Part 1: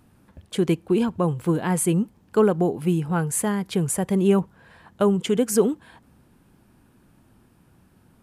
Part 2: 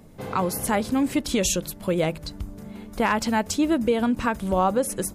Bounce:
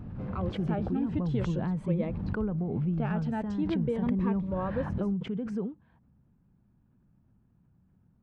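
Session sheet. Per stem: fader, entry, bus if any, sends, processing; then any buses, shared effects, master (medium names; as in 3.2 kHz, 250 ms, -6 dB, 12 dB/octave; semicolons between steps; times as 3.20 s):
-15.0 dB, 0.00 s, no send, resonant low shelf 240 Hz +7 dB, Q 1.5; band-stop 6.9 kHz, Q 14; swell ahead of each attack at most 23 dB/s
-0.5 dB, 0.00 s, no send, Shepard-style phaser rising 0.43 Hz; auto duck -6 dB, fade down 0.30 s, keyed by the first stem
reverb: none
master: tape spacing loss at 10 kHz 43 dB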